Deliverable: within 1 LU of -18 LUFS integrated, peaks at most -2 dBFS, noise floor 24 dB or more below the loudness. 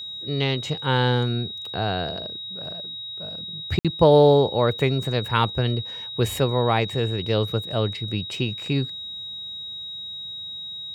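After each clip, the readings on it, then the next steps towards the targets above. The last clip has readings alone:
dropouts 1; longest dropout 57 ms; steady tone 3.8 kHz; tone level -32 dBFS; loudness -24.0 LUFS; peak level -4.0 dBFS; loudness target -18.0 LUFS
-> interpolate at 3.79 s, 57 ms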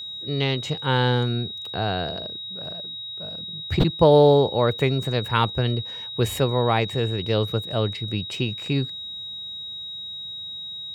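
dropouts 0; steady tone 3.8 kHz; tone level -32 dBFS
-> band-stop 3.8 kHz, Q 30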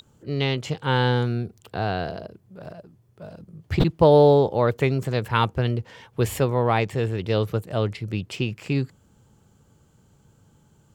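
steady tone not found; loudness -23.0 LUFS; peak level -4.0 dBFS; loudness target -18.0 LUFS
-> trim +5 dB; peak limiter -2 dBFS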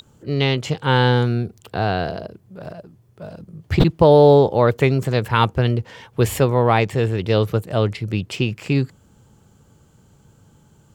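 loudness -18.5 LUFS; peak level -2.0 dBFS; noise floor -55 dBFS

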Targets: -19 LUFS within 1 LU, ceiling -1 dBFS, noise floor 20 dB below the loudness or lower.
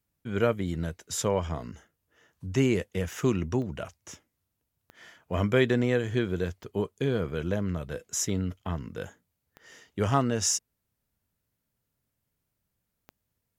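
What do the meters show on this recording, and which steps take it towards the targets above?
clicks found 5; loudness -29.0 LUFS; peak level -9.0 dBFS; loudness target -19.0 LUFS
-> de-click; trim +10 dB; peak limiter -1 dBFS

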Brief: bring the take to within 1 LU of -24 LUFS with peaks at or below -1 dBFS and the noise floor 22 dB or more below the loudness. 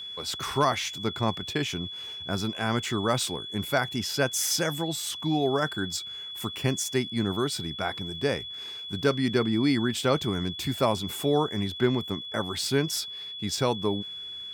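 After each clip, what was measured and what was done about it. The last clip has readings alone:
tick rate 25 per s; steady tone 3.4 kHz; tone level -36 dBFS; loudness -28.0 LUFS; peak level -12.0 dBFS; loudness target -24.0 LUFS
-> de-click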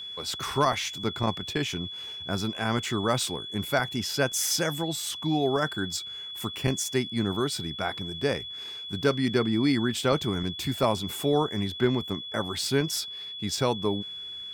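tick rate 0.62 per s; steady tone 3.4 kHz; tone level -36 dBFS
-> band-stop 3.4 kHz, Q 30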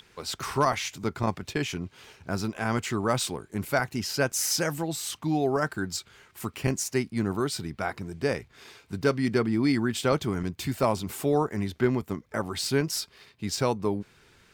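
steady tone not found; loudness -28.5 LUFS; peak level -12.0 dBFS; loudness target -24.0 LUFS
-> trim +4.5 dB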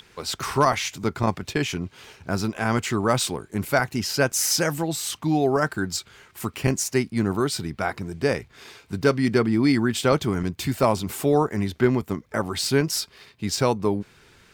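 loudness -24.0 LUFS; peak level -7.5 dBFS; noise floor -56 dBFS

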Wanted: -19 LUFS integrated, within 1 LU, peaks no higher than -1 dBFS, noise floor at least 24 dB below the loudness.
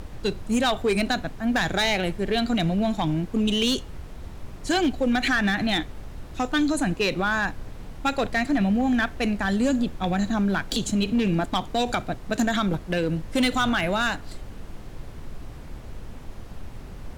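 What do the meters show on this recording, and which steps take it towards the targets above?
clipped samples 1.3%; clipping level -16.5 dBFS; noise floor -40 dBFS; noise floor target -49 dBFS; loudness -24.5 LUFS; peak level -16.5 dBFS; loudness target -19.0 LUFS
-> clip repair -16.5 dBFS; noise print and reduce 9 dB; trim +5.5 dB

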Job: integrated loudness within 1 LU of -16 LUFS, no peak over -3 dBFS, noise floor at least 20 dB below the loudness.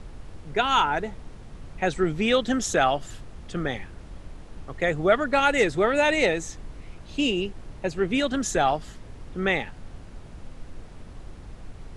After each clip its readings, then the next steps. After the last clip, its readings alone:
noise floor -44 dBFS; noise floor target -45 dBFS; loudness -24.5 LUFS; peak level -7.0 dBFS; loudness target -16.0 LUFS
-> noise print and reduce 6 dB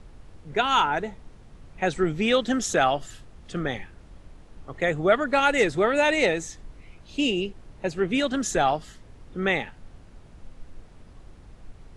noise floor -49 dBFS; loudness -24.5 LUFS; peak level -7.0 dBFS; loudness target -16.0 LUFS
-> trim +8.5 dB; peak limiter -3 dBFS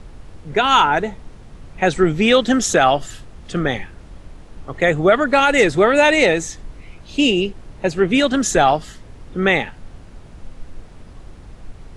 loudness -16.5 LUFS; peak level -3.0 dBFS; noise floor -41 dBFS

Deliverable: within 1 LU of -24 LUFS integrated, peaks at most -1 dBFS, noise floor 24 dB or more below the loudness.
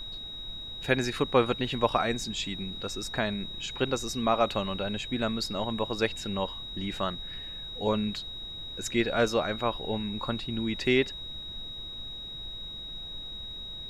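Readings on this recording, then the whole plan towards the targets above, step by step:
steady tone 3.8 kHz; tone level -38 dBFS; noise floor -40 dBFS; noise floor target -55 dBFS; loudness -30.5 LUFS; peak level -8.5 dBFS; loudness target -24.0 LUFS
-> band-stop 3.8 kHz, Q 30; noise print and reduce 15 dB; trim +6.5 dB

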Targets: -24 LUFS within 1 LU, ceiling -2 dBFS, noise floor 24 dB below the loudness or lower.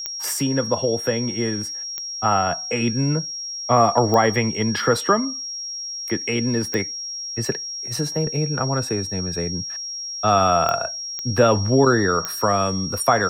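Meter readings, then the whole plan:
clicks found 7; steady tone 5.6 kHz; tone level -28 dBFS; loudness -21.5 LUFS; peak level -3.0 dBFS; loudness target -24.0 LUFS
-> de-click; band-stop 5.6 kHz, Q 30; trim -2.5 dB

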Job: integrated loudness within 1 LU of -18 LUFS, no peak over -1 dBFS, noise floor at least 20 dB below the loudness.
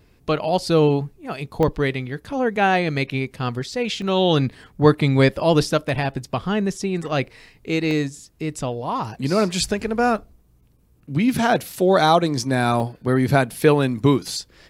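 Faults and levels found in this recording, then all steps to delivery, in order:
dropouts 5; longest dropout 1.2 ms; loudness -21.0 LUFS; peak level -1.5 dBFS; loudness target -18.0 LUFS
-> interpolate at 1.63/4.02/5.89/7.91/12.80 s, 1.2 ms; trim +3 dB; peak limiter -1 dBFS

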